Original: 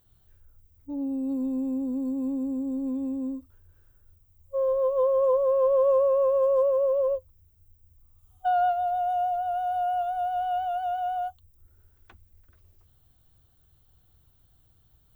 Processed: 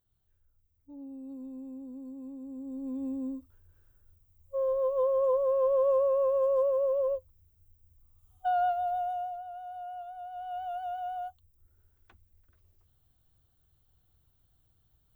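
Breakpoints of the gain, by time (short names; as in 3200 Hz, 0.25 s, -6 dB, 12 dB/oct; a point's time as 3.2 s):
2.4 s -14 dB
3.07 s -4 dB
8.97 s -4 dB
9.49 s -14 dB
10.28 s -14 dB
10.69 s -7 dB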